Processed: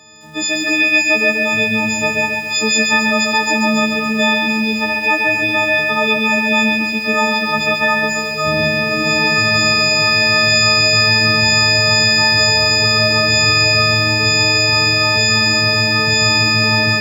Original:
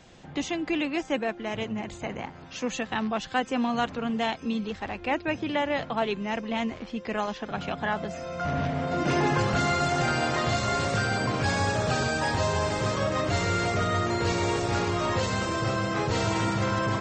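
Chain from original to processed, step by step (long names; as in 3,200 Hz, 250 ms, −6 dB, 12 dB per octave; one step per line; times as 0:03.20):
every partial snapped to a pitch grid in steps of 6 semitones
high-pass filter 83 Hz 24 dB per octave
in parallel at +2.5 dB: brickwall limiter −16.5 dBFS, peak gain reduction 7 dB
on the sum: automatic gain control gain up to 16 dB
on a send at −16 dB: convolution reverb RT60 0.50 s, pre-delay 47 ms
on the sum: feedback echo at a low word length 137 ms, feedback 55%, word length 6 bits, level −3.5 dB
level −5 dB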